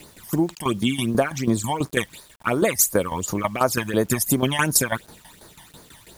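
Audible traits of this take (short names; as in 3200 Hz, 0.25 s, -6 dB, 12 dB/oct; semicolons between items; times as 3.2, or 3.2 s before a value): tremolo saw down 6.1 Hz, depth 75%; phasing stages 12, 2.8 Hz, lowest notch 410–2900 Hz; a quantiser's noise floor 10-bit, dither none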